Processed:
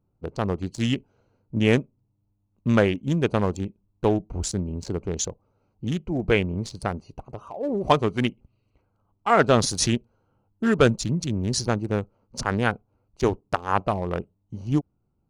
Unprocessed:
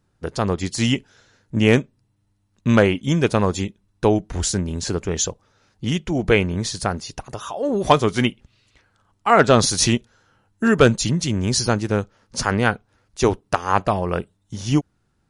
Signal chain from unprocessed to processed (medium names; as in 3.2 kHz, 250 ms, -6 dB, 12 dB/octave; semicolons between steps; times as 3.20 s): local Wiener filter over 25 samples; trim -4 dB